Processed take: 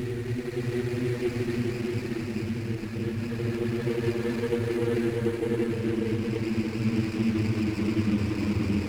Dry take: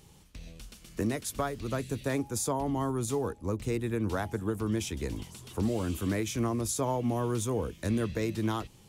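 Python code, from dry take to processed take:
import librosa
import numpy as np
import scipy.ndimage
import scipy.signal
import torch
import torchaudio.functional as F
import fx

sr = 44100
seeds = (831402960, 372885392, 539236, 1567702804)

y = fx.rattle_buzz(x, sr, strikes_db=-30.0, level_db=-26.0)
y = fx.paulstretch(y, sr, seeds[0], factor=35.0, window_s=0.1, from_s=3.82)
y = fx.dereverb_blind(y, sr, rt60_s=0.97)
y = y + 10.0 ** (-5.5 / 20.0) * np.pad(y, (int(628 * sr / 1000.0), 0))[:len(y)]
y = fx.running_max(y, sr, window=9)
y = y * librosa.db_to_amplitude(4.0)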